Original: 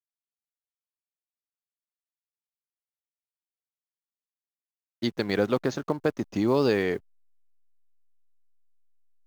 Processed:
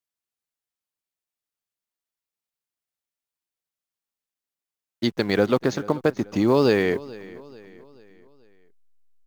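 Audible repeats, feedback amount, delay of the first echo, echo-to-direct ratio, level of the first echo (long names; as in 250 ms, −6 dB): 3, 47%, 435 ms, −19.0 dB, −20.0 dB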